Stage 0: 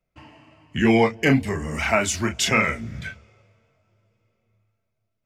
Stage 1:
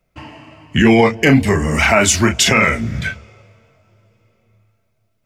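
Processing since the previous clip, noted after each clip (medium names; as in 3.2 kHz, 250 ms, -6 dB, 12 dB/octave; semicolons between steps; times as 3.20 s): loudness maximiser +12.5 dB; trim -1 dB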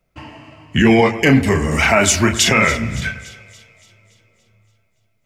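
two-band feedback delay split 2.4 kHz, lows 103 ms, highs 285 ms, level -14.5 dB; trim -1 dB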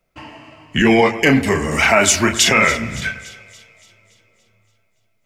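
peaking EQ 77 Hz -7.5 dB 2.8 oct; trim +1 dB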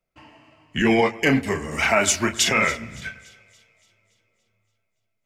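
upward expansion 1.5:1, over -24 dBFS; trim -5 dB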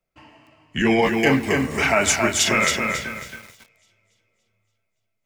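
bit-crushed delay 273 ms, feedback 35%, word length 7-bit, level -4 dB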